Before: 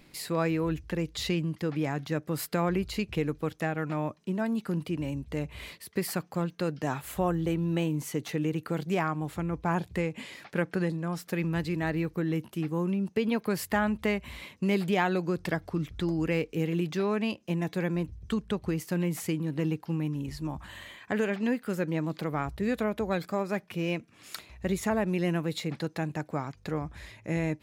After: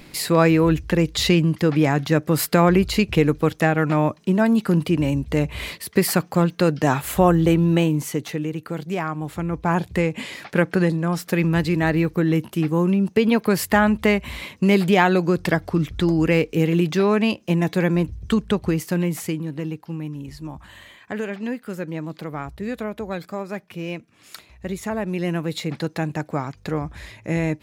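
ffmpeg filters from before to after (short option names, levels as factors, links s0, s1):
-af "volume=20,afade=t=out:st=7.53:d=0.93:silence=0.334965,afade=t=in:st=9.01:d=1.22:silence=0.421697,afade=t=out:st=18.48:d=1.17:silence=0.334965,afade=t=in:st=24.83:d=1.04:silence=0.473151"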